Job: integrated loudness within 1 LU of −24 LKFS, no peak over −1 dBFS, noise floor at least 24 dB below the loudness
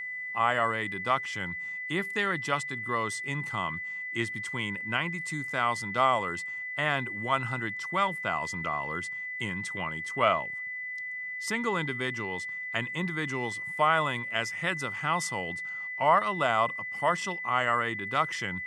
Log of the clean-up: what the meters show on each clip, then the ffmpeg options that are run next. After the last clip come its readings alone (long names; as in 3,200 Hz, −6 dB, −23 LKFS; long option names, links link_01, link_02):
interfering tone 2,000 Hz; level of the tone −34 dBFS; integrated loudness −29.5 LKFS; sample peak −9.0 dBFS; target loudness −24.0 LKFS
→ -af "bandreject=frequency=2000:width=30"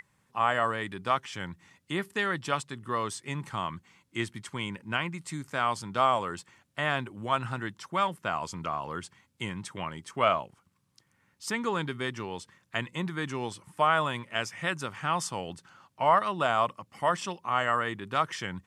interfering tone none found; integrated loudness −30.5 LKFS; sample peak −9.5 dBFS; target loudness −24.0 LKFS
→ -af "volume=6.5dB"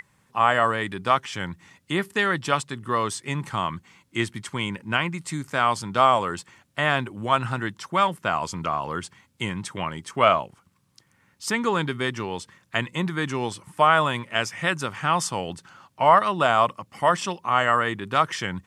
integrated loudness −24.0 LKFS; sample peak −3.0 dBFS; background noise floor −65 dBFS